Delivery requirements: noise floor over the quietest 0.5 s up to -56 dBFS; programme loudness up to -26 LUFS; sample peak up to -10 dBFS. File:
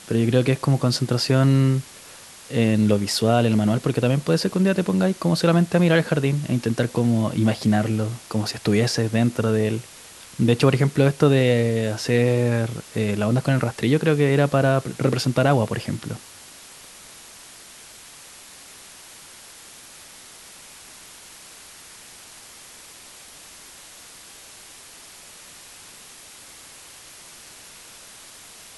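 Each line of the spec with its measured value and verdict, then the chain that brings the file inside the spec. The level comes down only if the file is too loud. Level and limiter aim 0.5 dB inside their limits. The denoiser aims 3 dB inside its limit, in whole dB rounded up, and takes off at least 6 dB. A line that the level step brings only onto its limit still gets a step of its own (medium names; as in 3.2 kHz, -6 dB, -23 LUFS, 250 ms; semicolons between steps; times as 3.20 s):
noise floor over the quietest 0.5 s -44 dBFS: fail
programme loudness -20.5 LUFS: fail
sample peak -4.0 dBFS: fail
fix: noise reduction 9 dB, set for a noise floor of -44 dBFS; trim -6 dB; peak limiter -10.5 dBFS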